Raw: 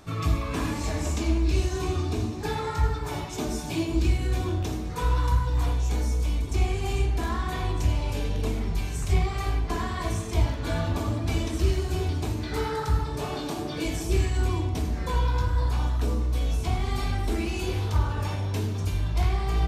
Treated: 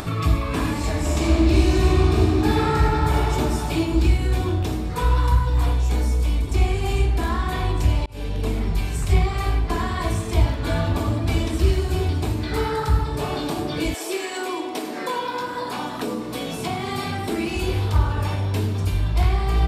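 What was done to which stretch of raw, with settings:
0:01.01–0:03.25: thrown reverb, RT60 2.8 s, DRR −2.5 dB
0:08.06–0:08.70: fade in equal-power
0:13.93–0:17.54: high-pass filter 420 Hz → 100 Hz 24 dB per octave
whole clip: parametric band 6,200 Hz −7 dB 0.31 octaves; upward compression, threshold −27 dBFS; level +5 dB

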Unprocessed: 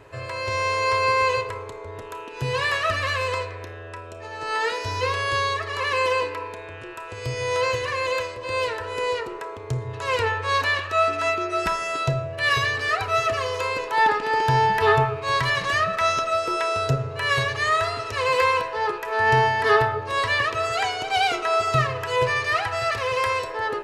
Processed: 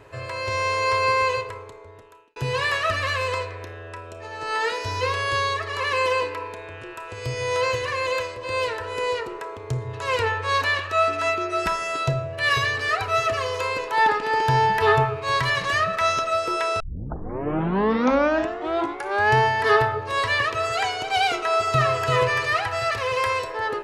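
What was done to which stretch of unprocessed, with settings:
0:01.13–0:02.36: fade out
0:16.80: tape start 2.57 s
0:21.46–0:22.11: delay throw 340 ms, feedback 15%, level −4 dB

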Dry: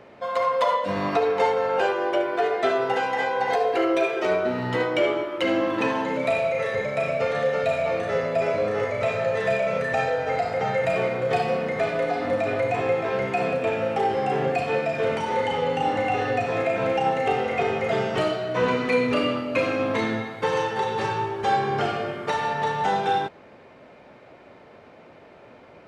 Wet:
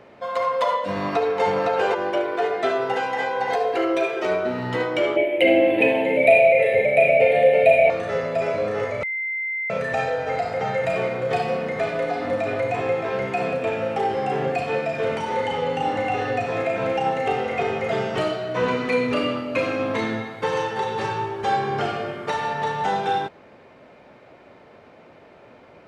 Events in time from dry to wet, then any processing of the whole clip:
0:00.95–0:01.43: delay throw 510 ms, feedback 30%, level −3.5 dB
0:05.16–0:07.90: drawn EQ curve 210 Hz 0 dB, 390 Hz +6 dB, 710 Hz +10 dB, 1,200 Hz −21 dB, 2,300 Hz +13 dB, 5,900 Hz −17 dB, 10,000 Hz +9 dB
0:09.03–0:09.70: beep over 2,080 Hz −24 dBFS

